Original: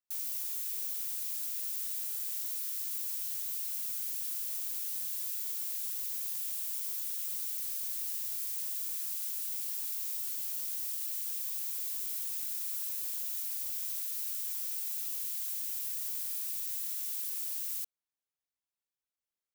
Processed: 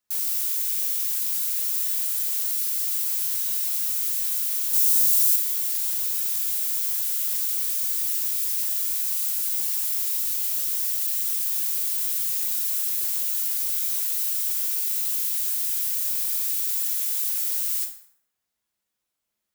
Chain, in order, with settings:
0:04.73–0:05.36: bass and treble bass +3 dB, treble +7 dB
convolution reverb RT60 0.80 s, pre-delay 5 ms, DRR 1 dB
level +9 dB

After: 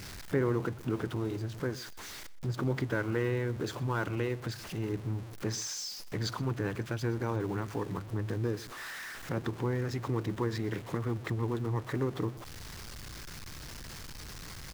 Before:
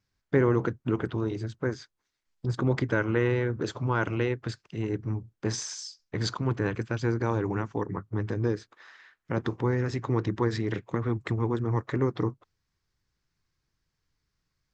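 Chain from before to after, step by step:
converter with a step at zero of −36 dBFS
in parallel at +0.5 dB: downward compressor, threshold −36 dBFS, peak gain reduction 17.5 dB
on the sum: slap from a distant wall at 21 metres, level −20 dB
level −8 dB

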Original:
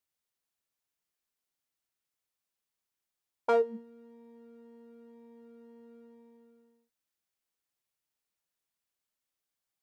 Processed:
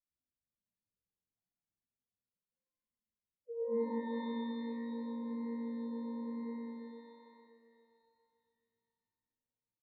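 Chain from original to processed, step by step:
running median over 41 samples
notch filter 410 Hz, Q 12
reversed playback
downward compressor 6 to 1, threshold −53 dBFS, peak gain reduction 25.5 dB
reversed playback
spectral peaks only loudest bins 2
on a send: echo with shifted repeats 86 ms, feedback 39%, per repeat +53 Hz, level −16.5 dB
on the sum: reverb with rising layers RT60 2.7 s, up +12 semitones, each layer −8 dB, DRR −4.5 dB
level +11.5 dB

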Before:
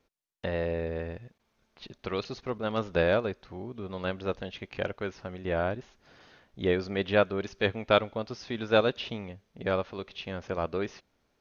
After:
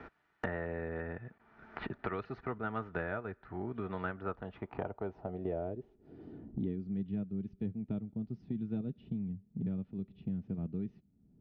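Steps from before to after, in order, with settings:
notch comb filter 540 Hz
low-pass filter sweep 1,600 Hz → 190 Hz, 0:04.10–0:06.96
multiband upward and downward compressor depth 100%
level −6.5 dB

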